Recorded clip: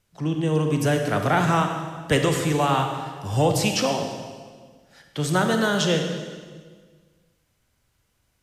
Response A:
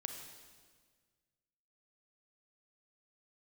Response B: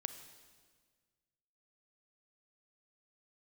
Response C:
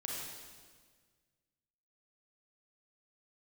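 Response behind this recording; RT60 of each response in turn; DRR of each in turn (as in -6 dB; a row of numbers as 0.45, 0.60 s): A; 1.6, 1.6, 1.6 s; 4.0, 9.0, -3.5 dB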